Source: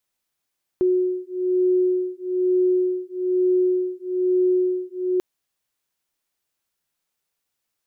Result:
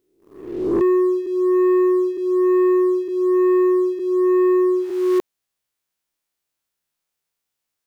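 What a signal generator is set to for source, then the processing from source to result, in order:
two tones that beat 365 Hz, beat 1.1 Hz, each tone −21 dBFS 4.39 s
peak hold with a rise ahead of every peak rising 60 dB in 0.96 s
leveller curve on the samples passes 2

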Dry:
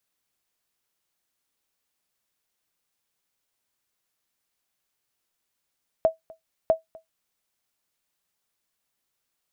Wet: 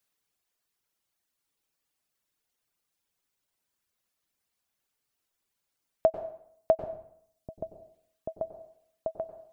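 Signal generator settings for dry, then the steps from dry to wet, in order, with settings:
ping with an echo 647 Hz, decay 0.14 s, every 0.65 s, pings 2, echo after 0.25 s, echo −25 dB −10.5 dBFS
reverb reduction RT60 1.5 s
echo whose low-pass opens from repeat to repeat 787 ms, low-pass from 200 Hz, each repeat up 1 octave, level −3 dB
dense smooth reverb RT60 0.65 s, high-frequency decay 0.85×, pre-delay 85 ms, DRR 9.5 dB

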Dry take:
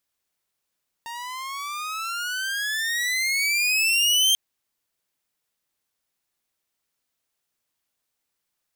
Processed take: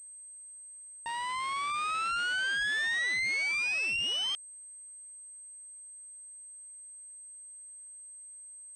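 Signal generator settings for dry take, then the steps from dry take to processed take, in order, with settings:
pitch glide with a swell saw, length 3.29 s, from 921 Hz, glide +21.5 semitones, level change +17 dB, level −13 dB
downward compressor 16 to 1, threshold −26 dBFS
switching amplifier with a slow clock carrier 8,300 Hz

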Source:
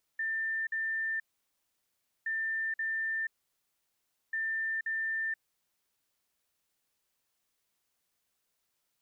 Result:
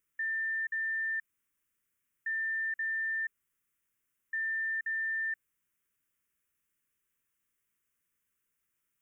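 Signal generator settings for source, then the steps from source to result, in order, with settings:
beeps in groups sine 1,790 Hz, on 0.48 s, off 0.05 s, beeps 2, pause 1.06 s, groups 3, −30 dBFS
phaser with its sweep stopped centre 1,800 Hz, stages 4

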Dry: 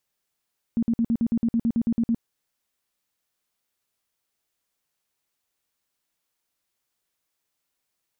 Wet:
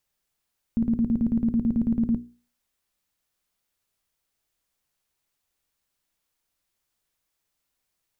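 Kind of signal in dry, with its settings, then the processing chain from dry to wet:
tone bursts 231 Hz, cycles 13, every 0.11 s, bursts 13, −18.5 dBFS
low-shelf EQ 91 Hz +11.5 dB
mains-hum notches 60/120/180/240/300/360/420/480 Hz

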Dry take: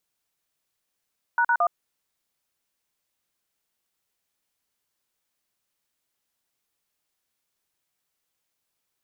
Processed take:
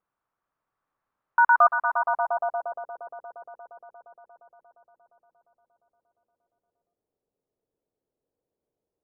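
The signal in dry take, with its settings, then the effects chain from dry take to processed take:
touch tones "##1", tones 67 ms, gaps 44 ms, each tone −20.5 dBFS
echo that builds up and dies away 117 ms, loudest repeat 5, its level −9.5 dB
low-pass filter sweep 1,200 Hz → 500 Hz, 0:01.78–0:02.88

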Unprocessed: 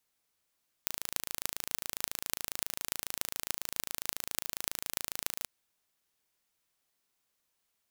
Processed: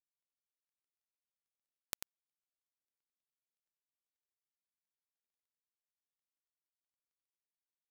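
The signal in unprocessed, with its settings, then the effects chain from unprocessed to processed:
impulse train 27.3 per second, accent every 8, −2 dBFS 4.60 s
gap after every zero crossing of 0.24 ms
single-tap delay 93 ms −6 dB

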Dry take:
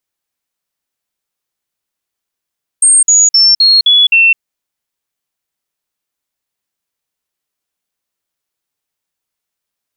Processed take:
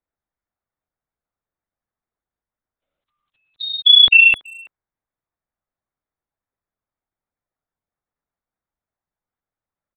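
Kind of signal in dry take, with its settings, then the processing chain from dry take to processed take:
stepped sweep 8,570 Hz down, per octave 3, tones 6, 0.21 s, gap 0.05 s −4 dBFS
adaptive Wiener filter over 15 samples
linear-prediction vocoder at 8 kHz whisper
far-end echo of a speakerphone 330 ms, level −24 dB

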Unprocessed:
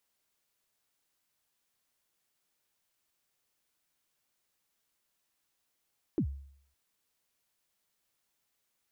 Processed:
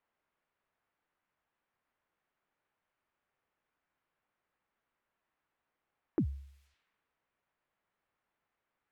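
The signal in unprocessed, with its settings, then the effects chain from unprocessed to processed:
synth kick length 0.56 s, from 380 Hz, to 69 Hz, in 82 ms, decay 0.63 s, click off, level −23.5 dB
low-pass that shuts in the quiet parts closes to 1,100 Hz, open at −47 dBFS
parametric band 2,300 Hz +9.5 dB 2.6 octaves

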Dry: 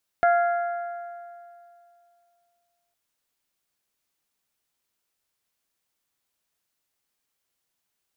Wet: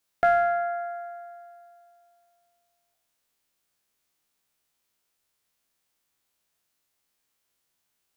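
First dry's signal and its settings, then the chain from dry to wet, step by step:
struck metal bell, length 2.71 s, lowest mode 694 Hz, modes 4, decay 2.56 s, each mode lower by 7 dB, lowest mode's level −15.5 dB
peak hold with a decay on every bin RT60 0.89 s

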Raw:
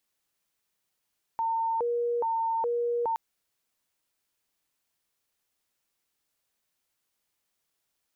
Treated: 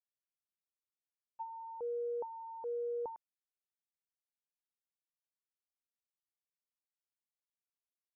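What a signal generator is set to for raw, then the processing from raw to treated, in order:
siren hi-lo 476–907 Hz 1.2 per second sine −25 dBFS 1.77 s
treble cut that deepens with the level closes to 860 Hz, closed at −27 dBFS
downward expander −22 dBFS

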